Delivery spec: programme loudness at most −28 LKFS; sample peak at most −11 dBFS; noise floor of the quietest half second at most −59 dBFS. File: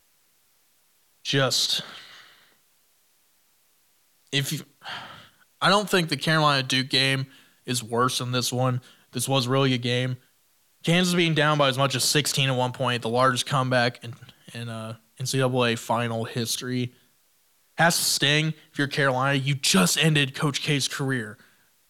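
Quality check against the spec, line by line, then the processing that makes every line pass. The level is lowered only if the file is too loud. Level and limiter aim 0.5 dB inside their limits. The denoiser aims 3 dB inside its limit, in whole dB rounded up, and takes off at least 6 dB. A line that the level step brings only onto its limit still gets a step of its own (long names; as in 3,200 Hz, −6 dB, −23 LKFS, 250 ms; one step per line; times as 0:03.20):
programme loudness −23.0 LKFS: out of spec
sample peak −7.0 dBFS: out of spec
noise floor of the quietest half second −64 dBFS: in spec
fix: level −5.5 dB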